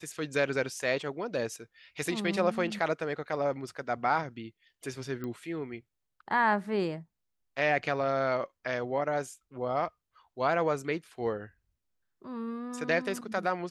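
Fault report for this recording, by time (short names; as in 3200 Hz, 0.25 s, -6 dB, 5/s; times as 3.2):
5.24 pop -25 dBFS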